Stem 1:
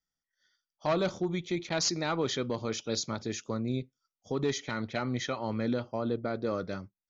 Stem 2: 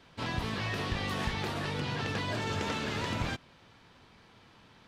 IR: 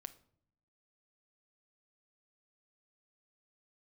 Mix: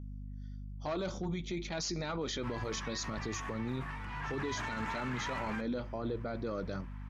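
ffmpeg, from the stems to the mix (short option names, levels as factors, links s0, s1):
-filter_complex "[0:a]aeval=exprs='val(0)+0.00794*(sin(2*PI*50*n/s)+sin(2*PI*2*50*n/s)/2+sin(2*PI*3*50*n/s)/3+sin(2*PI*4*50*n/s)/4+sin(2*PI*5*50*n/s)/5)':c=same,flanger=delay=0.1:depth=4.9:regen=-61:speed=0.29:shape=sinusoidal,volume=1.26,asplit=2[s0][s1];[s1]volume=0.299[s2];[1:a]equalizer=f=500:t=o:w=1:g=-11,equalizer=f=1000:t=o:w=1:g=12,equalizer=f=2000:t=o:w=1:g=9,equalizer=f=4000:t=o:w=1:g=-10,adelay=2250,volume=0.447,afade=t=in:st=4.04:d=0.54:silence=0.446684[s3];[2:a]atrim=start_sample=2205[s4];[s2][s4]afir=irnorm=-1:irlink=0[s5];[s0][s3][s5]amix=inputs=3:normalize=0,alimiter=level_in=1.68:limit=0.0631:level=0:latency=1:release=18,volume=0.596"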